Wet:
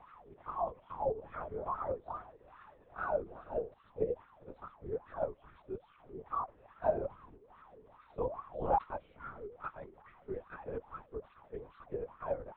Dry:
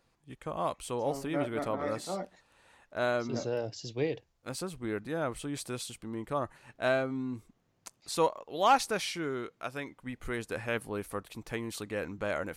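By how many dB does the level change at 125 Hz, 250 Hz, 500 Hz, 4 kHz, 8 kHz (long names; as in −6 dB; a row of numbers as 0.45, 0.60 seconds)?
−9.5 dB, −13.0 dB, −4.5 dB, below −30 dB, below −35 dB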